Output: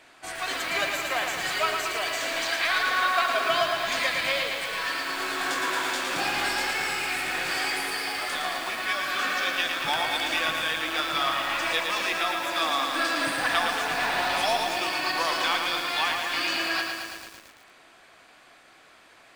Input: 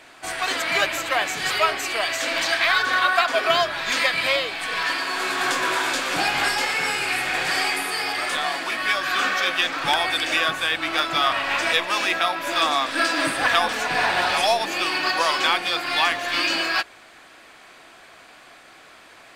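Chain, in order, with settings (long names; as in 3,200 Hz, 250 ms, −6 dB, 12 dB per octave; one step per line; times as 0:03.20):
feedback echo at a low word length 112 ms, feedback 80%, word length 6 bits, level −4.5 dB
level −6.5 dB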